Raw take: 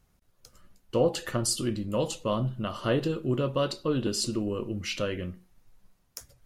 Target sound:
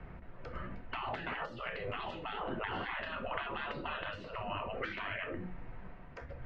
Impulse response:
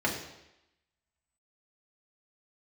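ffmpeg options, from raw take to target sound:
-filter_complex "[0:a]acrossover=split=140|290|1300[a][b][c][d];[a]acompressor=threshold=-45dB:ratio=4[e];[b]acompressor=threshold=-37dB:ratio=4[f];[c]acompressor=threshold=-36dB:ratio=4[g];[d]acompressor=threshold=-36dB:ratio=4[h];[e][f][g][h]amix=inputs=4:normalize=0,asplit=2[i][j];[1:a]atrim=start_sample=2205,atrim=end_sample=3087[k];[j][k]afir=irnorm=-1:irlink=0,volume=-13.5dB[l];[i][l]amix=inputs=2:normalize=0,afftfilt=real='re*lt(hypot(re,im),0.0282)':imag='im*lt(hypot(re,im),0.0282)':win_size=1024:overlap=0.75,acompressor=threshold=-51dB:ratio=6,lowpass=f=2.3k:w=0.5412,lowpass=f=2.3k:w=1.3066,volume=18dB"

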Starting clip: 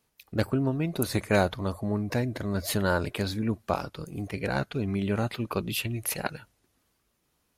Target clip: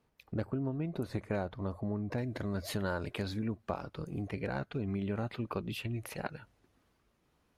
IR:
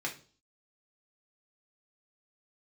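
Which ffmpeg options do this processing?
-af "acompressor=threshold=-39dB:ratio=2.5,asetnsamples=n=441:p=0,asendcmd='2.18 lowpass f 4000;3.48 lowpass f 2100',lowpass=f=1.2k:p=1,volume=2.5dB"

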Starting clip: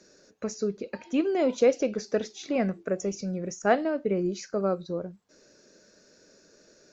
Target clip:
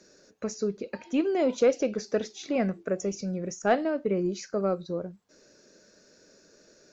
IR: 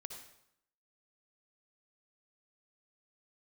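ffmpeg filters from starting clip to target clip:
-af "asoftclip=type=tanh:threshold=-10.5dB"

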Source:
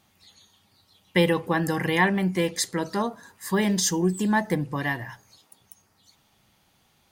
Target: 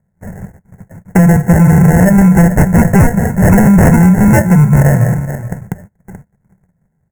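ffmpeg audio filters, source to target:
-filter_complex "[0:a]acompressor=threshold=-32dB:ratio=5,asettb=1/sr,asplit=3[a][b][c];[a]atrim=end=2.074[d];[b]atrim=start=2.07:end=4.47,asetpts=PTS-STARTPTS,afade=t=in:d=0.004:c=qsin,afade=t=out:st=2.396:d=0.004:c=qsin,equalizer=f=250:t=o:w=1:g=-5,equalizer=f=1k:t=o:w=1:g=11,equalizer=f=2k:t=o:w=1:g=7,equalizer=f=8k:t=o:w=1:g=7[e];[c]atrim=start=4.466[f];[d][e]acrossfade=d=0.004:c1=hsin:c2=qsin[g];[g][f]acrossfade=d=0.004:c1=qsin:c2=hsin,aecho=1:1:431:0.224,acrusher=samples=37:mix=1:aa=0.000001,asuperstop=centerf=3800:order=8:qfactor=0.88,agate=range=-29dB:threshold=-59dB:ratio=16:detection=peak,lowshelf=f=230:t=q:w=3:g=8,apsyclip=24.5dB,volume=-2dB"

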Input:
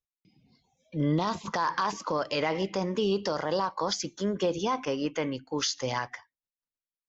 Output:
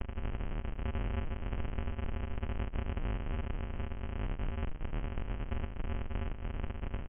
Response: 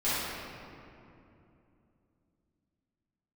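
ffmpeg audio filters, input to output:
-filter_complex "[0:a]aeval=exprs='val(0)+0.5*0.0299*sgn(val(0))':c=same,asplit=2[a][b];[b]adelay=84,lowpass=f=1.6k:p=1,volume=-19dB,asplit=2[c][d];[d]adelay=84,lowpass=f=1.6k:p=1,volume=0.17[e];[a][c][e]amix=inputs=3:normalize=0,asplit=2[f][g];[1:a]atrim=start_sample=2205,lowpass=3.5k,lowshelf=f=280:g=4.5[h];[g][h]afir=irnorm=-1:irlink=0,volume=-28.5dB[i];[f][i]amix=inputs=2:normalize=0,highpass=f=310:t=q:w=0.5412,highpass=f=310:t=q:w=1.307,lowpass=f=3k:t=q:w=0.5176,lowpass=f=3k:t=q:w=0.7071,lowpass=f=3k:t=q:w=1.932,afreqshift=260,aemphasis=mode=production:type=cd,acompressor=mode=upward:threshold=-28dB:ratio=2.5,adynamicequalizer=threshold=0.00891:dfrequency=790:dqfactor=2.9:tfrequency=790:tqfactor=2.9:attack=5:release=100:ratio=0.375:range=1.5:mode=cutabove:tftype=bell,afreqshift=69,aresample=11025,acrusher=samples=41:mix=1:aa=0.000001,aresample=44100,alimiter=level_in=1dB:limit=-24dB:level=0:latency=1:release=48,volume=-1dB,acompressor=threshold=-37dB:ratio=5,asetrate=25476,aresample=44100,atempo=1.73107,volume=5dB"

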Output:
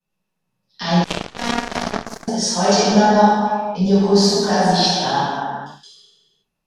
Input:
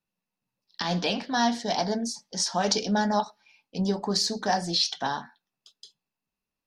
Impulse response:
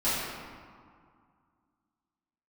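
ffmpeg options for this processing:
-filter_complex "[1:a]atrim=start_sample=2205,afade=t=out:st=0.41:d=0.01,atrim=end_sample=18522,asetrate=27783,aresample=44100[a];[0:a][a]afir=irnorm=-1:irlink=0,asettb=1/sr,asplit=3[b][c][d];[b]atrim=end=1.044[e];[c]atrim=start=1.04:end=2.28,asetpts=PTS-STARTPTS,afade=t=in:d=0.004:c=qsin,afade=t=out:st=1.236:d=0.004:c=qsin,aeval=exprs='1.12*(cos(1*acos(clip(val(0)/1.12,-1,1)))-cos(1*PI/2))+0.398*(cos(3*acos(clip(val(0)/1.12,-1,1)))-cos(3*PI/2))+0.0224*(cos(4*acos(clip(val(0)/1.12,-1,1)))-cos(4*PI/2))+0.0282*(cos(6*acos(clip(val(0)/1.12,-1,1)))-cos(6*PI/2))':c=same[f];[d]atrim=start=2.276[g];[e][f]acrossfade=d=0.004:c1=hsin:c2=qsin[h];[h][g]acrossfade=d=0.004:c1=qsin:c2=hsin,volume=-4.5dB"

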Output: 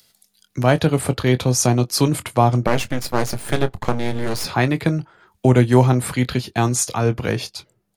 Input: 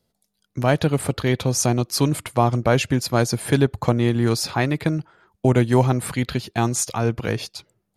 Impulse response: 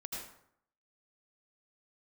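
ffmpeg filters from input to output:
-filter_complex "[0:a]acrossover=split=120|1400[a][b][c];[c]acompressor=mode=upward:threshold=-46dB:ratio=2.5[d];[a][b][d]amix=inputs=3:normalize=0,asettb=1/sr,asplit=3[e][f][g];[e]atrim=end=2.674[h];[f]atrim=start=2.67:end=4.45,asetpts=PTS-STARTPTS,afade=t=in:d=0.004:c=qsin,afade=t=out:st=1.776:d=0.004:c=qsin,aeval=exprs='max(val(0),0)':c=same[i];[g]atrim=start=4.446[j];[h][i]acrossfade=d=0.004:c1=hsin:c2=qsin[k];[k][j]acrossfade=d=0.004:c1=qsin:c2=hsin,asplit=2[l][m];[m]adelay=24,volume=-13dB[n];[l][n]amix=inputs=2:normalize=0,volume=2.5dB"

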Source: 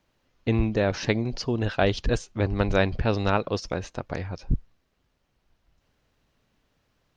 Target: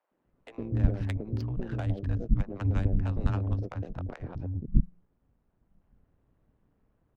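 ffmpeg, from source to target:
-filter_complex "[0:a]acrossover=split=130[a][b];[b]acompressor=threshold=-39dB:ratio=4[c];[a][c]amix=inputs=2:normalize=0,acrossover=split=190|570[d][e][f];[e]adelay=110[g];[d]adelay=240[h];[h][g][f]amix=inputs=3:normalize=0,acrossover=split=390[i][j];[j]adynamicsmooth=sensitivity=6.5:basefreq=900[k];[i][k]amix=inputs=2:normalize=0,tremolo=f=180:d=0.667,volume=6dB"

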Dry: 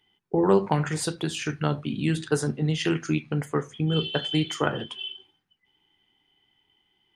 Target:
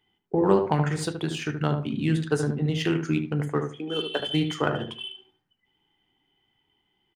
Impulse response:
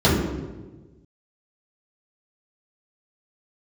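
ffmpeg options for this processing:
-filter_complex "[0:a]asettb=1/sr,asplit=3[a][b][c];[a]atrim=end=3.724[d];[b]atrim=start=3.72:end=4.2,asetpts=PTS-STARTPTS,afade=t=in:d=0.004:c=qsin,afade=t=out:st=0.476:d=0.004:c=qsin,highpass=f=280:w=0.5412,highpass=f=280:w=1.3066[e];[c]atrim=start=4.196[f];[d][e]acrossfade=d=0.004:c1=hsin:c2=qsin[g];[g][f]acrossfade=d=0.004:c1=qsin:c2=hsin,asplit=2[h][i];[i]adynamicsmooth=sensitivity=6.5:basefreq=2.9k,volume=-3dB[j];[h][j]amix=inputs=2:normalize=0,asplit=2[k][l];[l]adelay=75,lowpass=f=1.2k:p=1,volume=-5.5dB,asplit=2[m][n];[n]adelay=75,lowpass=f=1.2k:p=1,volume=0.22,asplit=2[o][p];[p]adelay=75,lowpass=f=1.2k:p=1,volume=0.22[q];[k][m][o][q]amix=inputs=4:normalize=0,volume=-5dB"

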